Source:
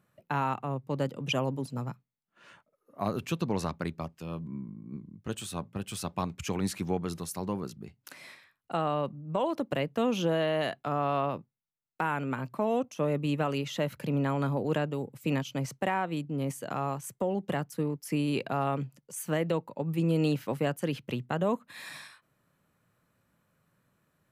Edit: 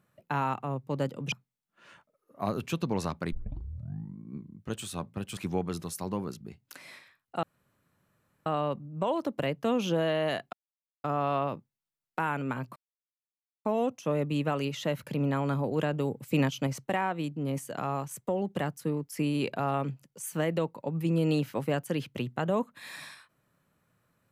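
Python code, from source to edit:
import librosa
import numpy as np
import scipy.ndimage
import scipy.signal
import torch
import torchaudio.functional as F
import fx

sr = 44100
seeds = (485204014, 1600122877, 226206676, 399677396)

y = fx.edit(x, sr, fx.cut(start_s=1.32, length_s=0.59),
    fx.tape_start(start_s=3.91, length_s=0.85),
    fx.cut(start_s=5.96, length_s=0.77),
    fx.insert_room_tone(at_s=8.79, length_s=1.03),
    fx.insert_silence(at_s=10.86, length_s=0.51),
    fx.insert_silence(at_s=12.58, length_s=0.89),
    fx.clip_gain(start_s=14.86, length_s=0.74, db=3.5), tone=tone)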